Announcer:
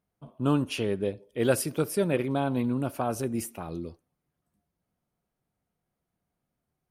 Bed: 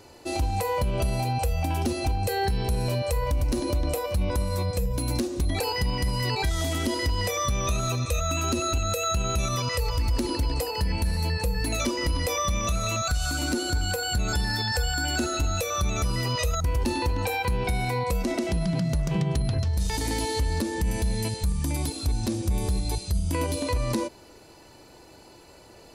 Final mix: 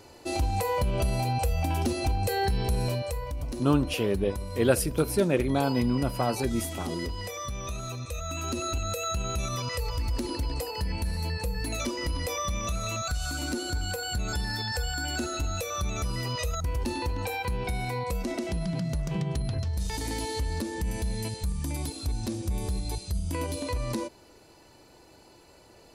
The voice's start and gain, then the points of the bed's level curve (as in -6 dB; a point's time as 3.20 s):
3.20 s, +1.5 dB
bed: 2.84 s -1 dB
3.28 s -9 dB
8.13 s -9 dB
8.63 s -4.5 dB